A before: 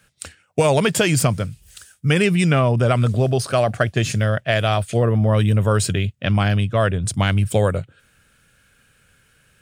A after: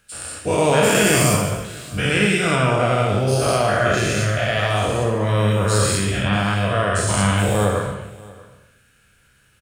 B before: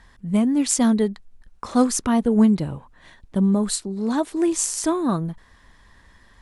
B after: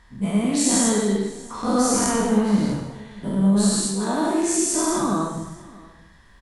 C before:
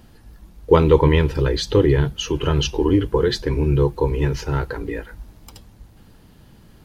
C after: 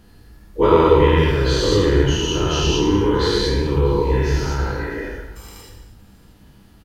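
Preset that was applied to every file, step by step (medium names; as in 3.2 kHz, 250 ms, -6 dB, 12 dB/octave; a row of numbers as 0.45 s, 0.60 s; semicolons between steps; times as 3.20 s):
every event in the spectrogram widened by 240 ms; on a send: delay 636 ms -22 dB; on the sum: gated-style reverb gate 340 ms falling, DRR 0.5 dB; trim -8 dB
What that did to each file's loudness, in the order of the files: +0.5 LU, 0.0 LU, +1.5 LU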